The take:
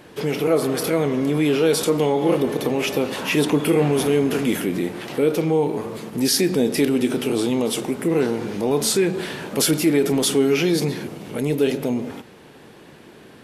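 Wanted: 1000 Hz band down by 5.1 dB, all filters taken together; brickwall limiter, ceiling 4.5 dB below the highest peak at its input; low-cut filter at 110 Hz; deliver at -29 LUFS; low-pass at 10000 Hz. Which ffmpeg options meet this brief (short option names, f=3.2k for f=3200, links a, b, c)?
-af "highpass=110,lowpass=10k,equalizer=f=1k:t=o:g=-7,volume=-6dB,alimiter=limit=-18.5dB:level=0:latency=1"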